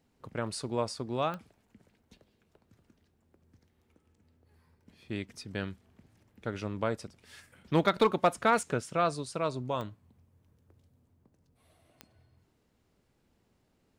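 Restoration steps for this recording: clip repair -14.5 dBFS; de-click

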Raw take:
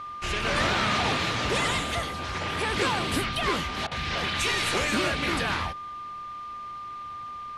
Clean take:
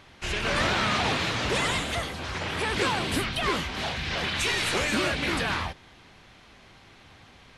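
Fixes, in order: notch 1200 Hz, Q 30; interpolate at 3.87, 43 ms

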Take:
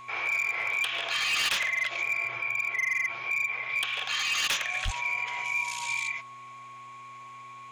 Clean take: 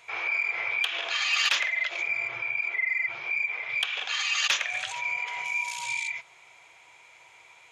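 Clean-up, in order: clip repair -23 dBFS; de-hum 123.4 Hz, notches 3; notch 1100 Hz, Q 30; 4.84–4.96 HPF 140 Hz 24 dB/oct

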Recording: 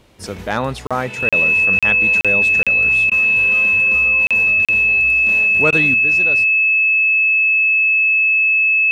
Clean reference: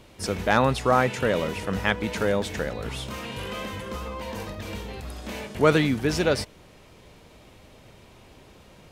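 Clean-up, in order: notch 2600 Hz, Q 30; interpolate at 0.87/1.29/1.79/2.21/2.63/4.27/4.65, 36 ms; interpolate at 3.1/5.71, 14 ms; gain correction +8 dB, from 5.94

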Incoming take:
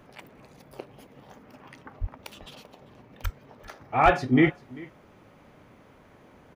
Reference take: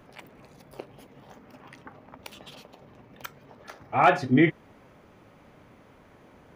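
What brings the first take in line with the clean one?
de-plosive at 2/3.23/4.04; inverse comb 0.392 s -22 dB

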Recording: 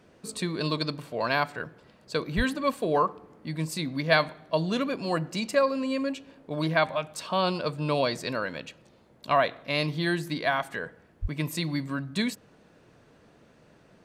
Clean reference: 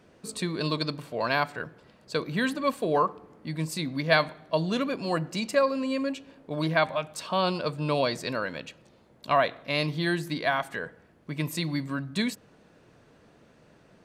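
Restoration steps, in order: de-plosive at 2.36/11.21

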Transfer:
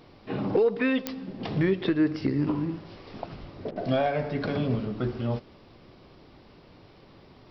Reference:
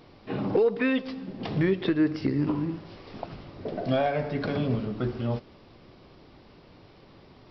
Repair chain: de-click; de-plosive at 3.4; interpolate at 3.71, 48 ms

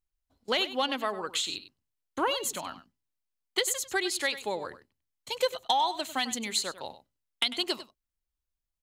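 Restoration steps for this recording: inverse comb 98 ms -14 dB

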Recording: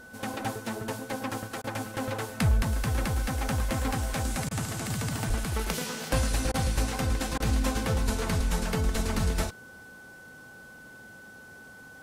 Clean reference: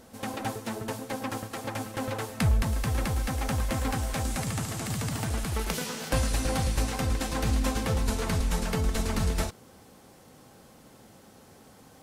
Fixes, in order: notch 1500 Hz, Q 30; 5.28–5.4 HPF 140 Hz 24 dB/oct; interpolate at 1.62/4.49/6.52/7.38, 19 ms

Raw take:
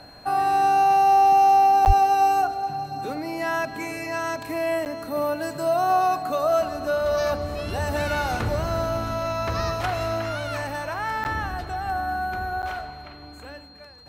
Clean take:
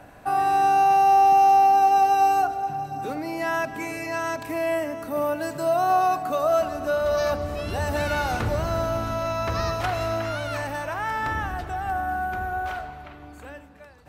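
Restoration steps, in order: notch 4200 Hz, Q 30; 1.86–1.98 HPF 140 Hz 24 dB/oct; interpolate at 1.85/4.85/11.24/12.62, 9.3 ms

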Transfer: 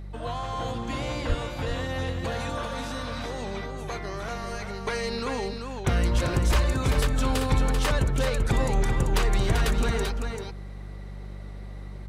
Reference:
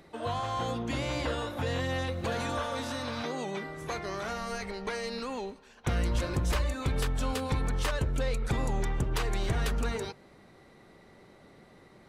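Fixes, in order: de-hum 49.1 Hz, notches 4; de-plosive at 1.28; inverse comb 0.389 s -6 dB; gain correction -5 dB, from 4.87

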